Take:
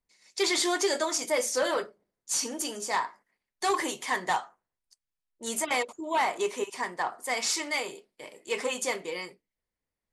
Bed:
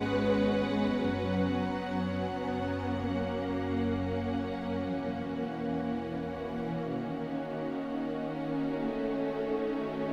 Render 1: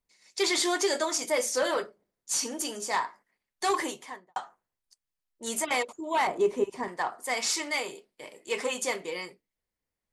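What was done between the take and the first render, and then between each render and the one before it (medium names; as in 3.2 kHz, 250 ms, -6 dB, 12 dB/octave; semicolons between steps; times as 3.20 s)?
3.75–4.36 s: studio fade out; 6.27–6.88 s: tilt shelf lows +10 dB, about 750 Hz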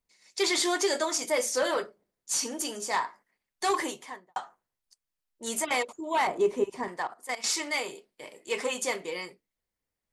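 6.99–7.44 s: level held to a coarse grid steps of 15 dB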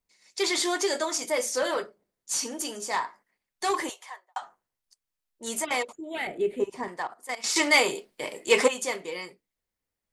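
3.89–4.42 s: high-pass 620 Hz 24 dB/octave; 5.95–6.60 s: static phaser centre 2.5 kHz, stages 4; 7.56–8.68 s: gain +10.5 dB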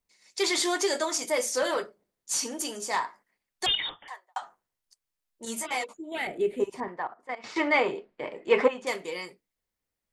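3.66–4.08 s: frequency inversion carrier 4 kHz; 5.45–6.12 s: three-phase chorus; 6.80–8.87 s: low-pass 1.9 kHz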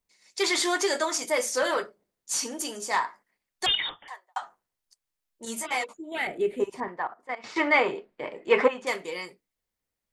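dynamic bell 1.5 kHz, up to +4 dB, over -38 dBFS, Q 0.86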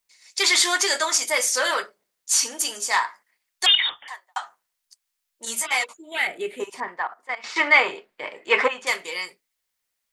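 tilt shelf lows -9 dB, about 650 Hz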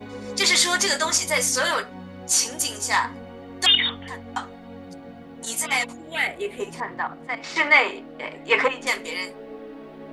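add bed -7 dB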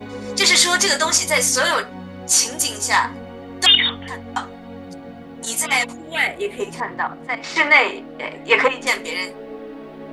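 trim +4.5 dB; peak limiter -1 dBFS, peak gain reduction 2 dB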